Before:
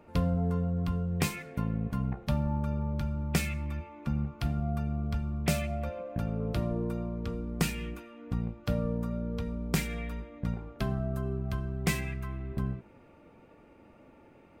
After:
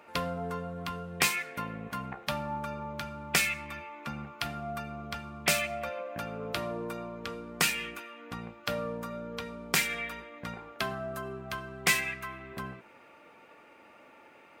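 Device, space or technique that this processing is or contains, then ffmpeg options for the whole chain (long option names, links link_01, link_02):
filter by subtraction: -filter_complex "[0:a]asplit=2[link_01][link_02];[link_02]lowpass=1700,volume=-1[link_03];[link_01][link_03]amix=inputs=2:normalize=0,volume=7.5dB"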